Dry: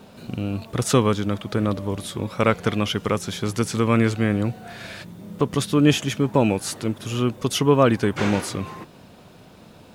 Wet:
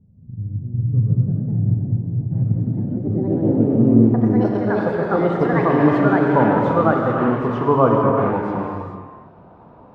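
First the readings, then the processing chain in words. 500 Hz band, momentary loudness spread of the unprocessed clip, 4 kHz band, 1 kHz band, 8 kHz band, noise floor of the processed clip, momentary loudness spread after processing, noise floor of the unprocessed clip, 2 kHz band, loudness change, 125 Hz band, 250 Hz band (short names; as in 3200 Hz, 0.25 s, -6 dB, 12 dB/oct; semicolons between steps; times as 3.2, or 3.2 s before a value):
+4.0 dB, 14 LU, under -15 dB, +6.5 dB, under -30 dB, -46 dBFS, 11 LU, -48 dBFS, +1.0 dB, +4.0 dB, +5.5 dB, +5.0 dB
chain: low-pass sweep 110 Hz -> 1000 Hz, 2.48–6.15; echoes that change speed 0.308 s, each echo +3 st, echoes 3; non-linear reverb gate 0.47 s flat, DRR -0.5 dB; gain -2.5 dB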